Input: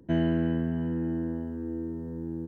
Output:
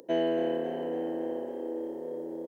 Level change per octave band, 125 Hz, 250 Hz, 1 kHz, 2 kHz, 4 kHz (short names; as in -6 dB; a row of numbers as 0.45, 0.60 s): -19.0 dB, -6.0 dB, +6.5 dB, -2.5 dB, n/a